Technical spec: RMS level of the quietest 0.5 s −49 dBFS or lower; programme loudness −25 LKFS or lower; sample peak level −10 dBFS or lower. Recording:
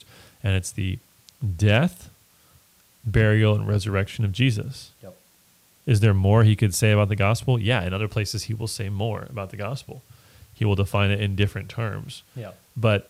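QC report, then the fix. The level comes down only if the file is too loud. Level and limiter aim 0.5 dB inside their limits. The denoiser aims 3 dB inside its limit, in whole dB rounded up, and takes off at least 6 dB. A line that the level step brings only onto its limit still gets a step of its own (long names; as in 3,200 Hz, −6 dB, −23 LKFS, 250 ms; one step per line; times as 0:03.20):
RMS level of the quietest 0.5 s −59 dBFS: in spec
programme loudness −23.0 LKFS: out of spec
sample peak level −7.0 dBFS: out of spec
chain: level −2.5 dB
brickwall limiter −10.5 dBFS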